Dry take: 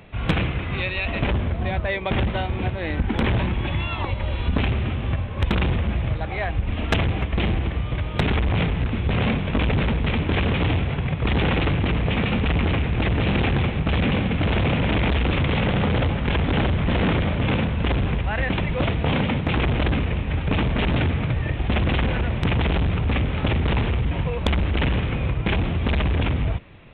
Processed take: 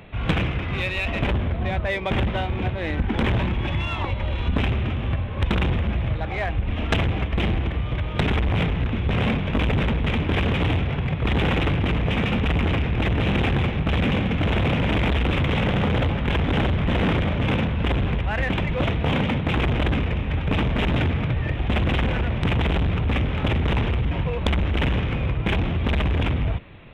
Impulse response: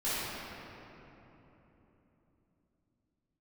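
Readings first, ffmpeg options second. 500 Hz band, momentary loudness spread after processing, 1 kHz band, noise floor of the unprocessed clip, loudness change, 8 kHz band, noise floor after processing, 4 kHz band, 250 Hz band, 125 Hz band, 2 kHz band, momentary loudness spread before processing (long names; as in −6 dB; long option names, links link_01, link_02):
−0.5 dB, 4 LU, −0.5 dB, −29 dBFS, −0.5 dB, can't be measured, −28 dBFS, −0.5 dB, −0.5 dB, −0.5 dB, −0.5 dB, 4 LU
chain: -filter_complex "[0:a]asplit=2[link_01][link_02];[link_02]asoftclip=type=tanh:threshold=-30.5dB,volume=-6dB[link_03];[link_01][link_03]amix=inputs=2:normalize=0,volume=-1.5dB"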